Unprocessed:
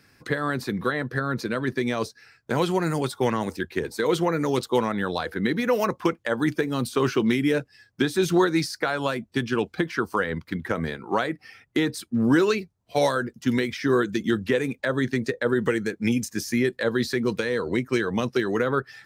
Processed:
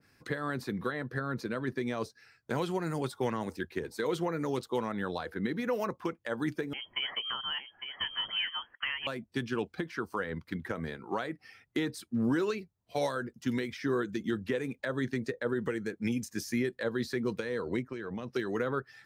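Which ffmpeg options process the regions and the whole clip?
ffmpeg -i in.wav -filter_complex "[0:a]asettb=1/sr,asplit=3[link_01][link_02][link_03];[link_01]atrim=end=6.734[link_04];[link_02]atrim=start=6.73:end=9.07,asetpts=PTS-STARTPTS,afade=type=in:duration=0.004:curve=qsin,afade=type=out:start_time=2.336:duration=0.004:curve=qsin,highpass=frequency=490:poles=1,lowpass=frequency=2900:width_type=q:width=0.5098,lowpass=frequency=2900:width_type=q:width=0.6013,lowpass=frequency=2900:width_type=q:width=0.9,lowpass=frequency=2900:width_type=q:width=2.563,afreqshift=-3400,aecho=1:1:855:0.355,atrim=end_sample=103194[link_05];[link_03]atrim=start=9.066[link_06];[link_04][link_05]acrossfade=duration=0.004:curve1=hsin:curve2=qsin[link_07];[link_07][link_06]acrossfade=duration=0.004:curve1=qsin:curve2=hsin,asettb=1/sr,asplit=3[link_08][link_09][link_10];[link_08]atrim=end=17.824[link_11];[link_09]atrim=start=17.82:end=18.34,asetpts=PTS-STARTPTS,afade=type=in:duration=0.004:curve=qsin,afade=type=out:start_time=0.516:duration=0.004:curve=qsin,lowpass=frequency=3100:poles=1,acompressor=threshold=-26dB:ratio=12:attack=3.2:release=140:knee=1:detection=peak[link_12];[link_10]atrim=start=18.336[link_13];[link_11][link_12]acrossfade=duration=0.004:curve1=hsin:curve2=qsin[link_14];[link_14][link_13]acrossfade=duration=0.004:curve1=qsin:curve2=hsin,alimiter=limit=-13.5dB:level=0:latency=1:release=275,adynamicequalizer=threshold=0.0112:dfrequency=1900:dqfactor=0.7:tfrequency=1900:tqfactor=0.7:attack=5:release=100:ratio=0.375:range=2:mode=cutabove:tftype=highshelf,volume=-7dB" out.wav

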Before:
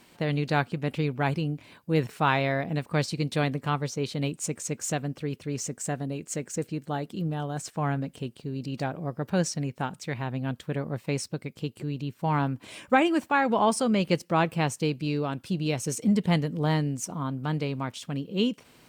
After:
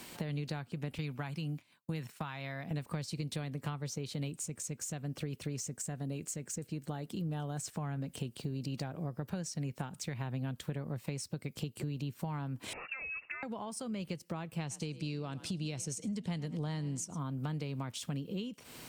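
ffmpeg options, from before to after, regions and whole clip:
ffmpeg -i in.wav -filter_complex "[0:a]asettb=1/sr,asplit=3[link_01][link_02][link_03];[link_01]atrim=end=0.984[link_04];[link_02]atrim=start=0.98:end=2.71,asetpts=PTS-STARTPTS,afade=type=in:duration=0.004:curve=qsin,afade=type=out:start_time=1.726:duration=0.004:curve=qsin,highpass=140,agate=range=-33dB:threshold=-39dB:ratio=3:release=100:detection=peak,equalizer=frequency=420:width=1.1:gain=-8.5[link_05];[link_03]atrim=start=2.706[link_06];[link_04][link_05]acrossfade=duration=0.004:curve1=hsin:curve2=qsin[link_07];[link_07][link_06]acrossfade=duration=0.004:curve1=qsin:curve2=hsin,asettb=1/sr,asplit=3[link_08][link_09][link_10];[link_08]atrim=end=12.734[link_11];[link_09]atrim=start=12.73:end=13.43,asetpts=PTS-STARTPTS,afade=type=in:duration=0.004:curve=qsin,afade=type=out:start_time=0.696:duration=0.004:curve=qsin,acompressor=threshold=-43dB:ratio=2:attack=3.2:release=140:knee=1:detection=peak,lowpass=frequency=2500:width_type=q:width=0.5098,lowpass=frequency=2500:width_type=q:width=0.6013,lowpass=frequency=2500:width_type=q:width=0.9,lowpass=frequency=2500:width_type=q:width=2.563,afreqshift=-2900[link_12];[link_10]atrim=start=13.426[link_13];[link_11][link_12]acrossfade=duration=0.004:curve1=hsin:curve2=qsin[link_14];[link_14][link_13]acrossfade=duration=0.004:curve1=qsin:curve2=hsin,asettb=1/sr,asplit=3[link_15][link_16][link_17];[link_15]atrim=end=14.604[link_18];[link_16]atrim=start=14.6:end=17.19,asetpts=PTS-STARTPTS,afade=type=in:duration=0.004:curve=qsin,afade=type=out:start_time=2.586:duration=0.004:curve=qsin,lowpass=7100,highshelf=frequency=4800:gain=9,asplit=3[link_19][link_20][link_21];[link_20]adelay=104,afreqshift=32,volume=-21dB[link_22];[link_21]adelay=208,afreqshift=64,volume=-31.2dB[link_23];[link_19][link_22][link_23]amix=inputs=3:normalize=0,atrim=end_sample=114219[link_24];[link_17]atrim=start=17.186[link_25];[link_18][link_24]acrossfade=duration=0.004:curve1=hsin:curve2=qsin[link_26];[link_26][link_25]acrossfade=duration=0.004:curve1=qsin:curve2=hsin,acompressor=threshold=-38dB:ratio=4,highshelf=frequency=5100:gain=7.5,acrossover=split=160[link_27][link_28];[link_28]acompressor=threshold=-44dB:ratio=6[link_29];[link_27][link_29]amix=inputs=2:normalize=0,volume=5dB" out.wav

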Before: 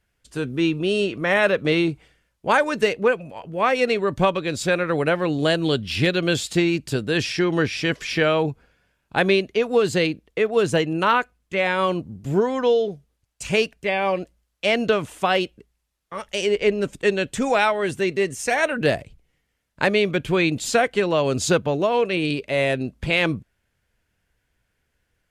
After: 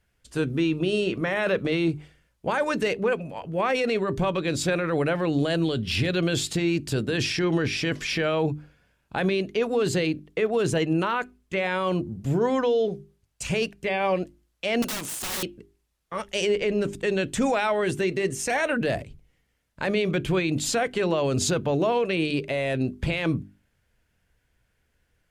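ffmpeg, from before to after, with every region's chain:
ffmpeg -i in.wav -filter_complex "[0:a]asettb=1/sr,asplit=3[link_01][link_02][link_03];[link_01]atrim=end=14.824[link_04];[link_02]atrim=start=14.82:end=15.43,asetpts=PTS-STARTPTS,afade=type=in:duration=0.004:curve=qsin,afade=type=out:start_time=0.606:duration=0.004:curve=qsin,bass=frequency=250:gain=-12,treble=frequency=4000:gain=13,acrossover=split=190|3000[link_05][link_06][link_07];[link_06]acompressor=threshold=-29dB:ratio=2:attack=3.2:release=140:knee=2.83:detection=peak[link_08];[link_05][link_08][link_07]amix=inputs=3:normalize=0,aeval=exprs='(mod(18.8*val(0)+1,2)-1)/18.8':channel_layout=same[link_09];[link_03]atrim=start=15.426[link_10];[link_04][link_09]acrossfade=duration=0.004:curve1=hsin:curve2=qsin[link_11];[link_11][link_10]acrossfade=duration=0.004:curve1=qsin:curve2=hsin,alimiter=limit=-16.5dB:level=0:latency=1:release=15,lowshelf=frequency=340:gain=3.5,bandreject=frequency=50:width_type=h:width=6,bandreject=frequency=100:width_type=h:width=6,bandreject=frequency=150:width_type=h:width=6,bandreject=frequency=200:width_type=h:width=6,bandreject=frequency=250:width_type=h:width=6,bandreject=frequency=300:width_type=h:width=6,bandreject=frequency=350:width_type=h:width=6,bandreject=frequency=400:width_type=h:width=6" out.wav

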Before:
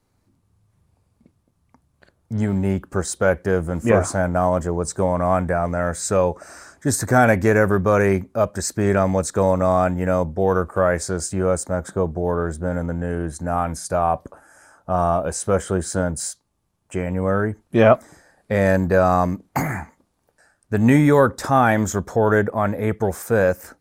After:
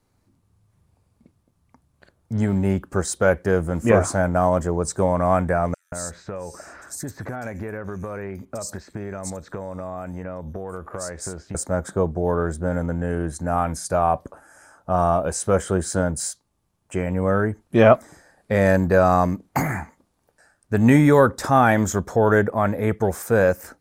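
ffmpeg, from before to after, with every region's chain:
ffmpeg -i in.wav -filter_complex "[0:a]asettb=1/sr,asplit=3[link_01][link_02][link_03];[link_01]atrim=end=5.744[link_04];[link_02]atrim=start=5.74:end=11.55,asetpts=PTS-STARTPTS,afade=type=in:duration=0.004:curve=qsin,afade=type=out:start_time=5.806:duration=0.004:curve=qsin,acompressor=threshold=-27dB:ratio=12:attack=3.2:release=140:knee=1:detection=peak,acrossover=split=3800[link_05][link_06];[link_05]adelay=180[link_07];[link_07][link_06]amix=inputs=2:normalize=0,atrim=end_sample=256221[link_08];[link_03]atrim=start=11.546[link_09];[link_04][link_08]acrossfade=duration=0.004:curve1=hsin:curve2=qsin[link_10];[link_10][link_09]acrossfade=duration=0.004:curve1=qsin:curve2=hsin" out.wav

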